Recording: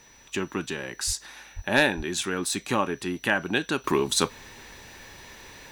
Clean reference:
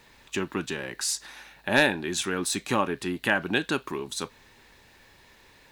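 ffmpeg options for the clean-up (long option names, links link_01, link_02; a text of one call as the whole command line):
ffmpeg -i in.wav -filter_complex "[0:a]bandreject=frequency=5900:width=30,asplit=3[link_01][link_02][link_03];[link_01]afade=type=out:start_time=1.06:duration=0.02[link_04];[link_02]highpass=frequency=140:width=0.5412,highpass=frequency=140:width=1.3066,afade=type=in:start_time=1.06:duration=0.02,afade=type=out:start_time=1.18:duration=0.02[link_05];[link_03]afade=type=in:start_time=1.18:duration=0.02[link_06];[link_04][link_05][link_06]amix=inputs=3:normalize=0,asplit=3[link_07][link_08][link_09];[link_07]afade=type=out:start_time=1.55:duration=0.02[link_10];[link_08]highpass=frequency=140:width=0.5412,highpass=frequency=140:width=1.3066,afade=type=in:start_time=1.55:duration=0.02,afade=type=out:start_time=1.67:duration=0.02[link_11];[link_09]afade=type=in:start_time=1.67:duration=0.02[link_12];[link_10][link_11][link_12]amix=inputs=3:normalize=0,asplit=3[link_13][link_14][link_15];[link_13]afade=type=out:start_time=1.96:duration=0.02[link_16];[link_14]highpass=frequency=140:width=0.5412,highpass=frequency=140:width=1.3066,afade=type=in:start_time=1.96:duration=0.02,afade=type=out:start_time=2.08:duration=0.02[link_17];[link_15]afade=type=in:start_time=2.08:duration=0.02[link_18];[link_16][link_17][link_18]amix=inputs=3:normalize=0,asetnsamples=nb_out_samples=441:pad=0,asendcmd='3.84 volume volume -9.5dB',volume=0dB" out.wav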